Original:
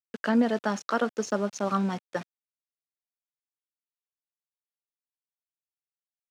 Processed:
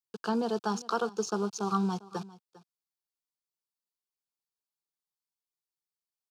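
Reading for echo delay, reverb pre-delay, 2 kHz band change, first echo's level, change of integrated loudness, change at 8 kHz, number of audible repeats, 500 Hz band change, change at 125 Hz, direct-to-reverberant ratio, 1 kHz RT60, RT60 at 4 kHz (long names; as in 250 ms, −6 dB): 400 ms, no reverb audible, −8.5 dB, −19.5 dB, −3.5 dB, 0.0 dB, 1, −3.5 dB, −1.5 dB, no reverb audible, no reverb audible, no reverb audible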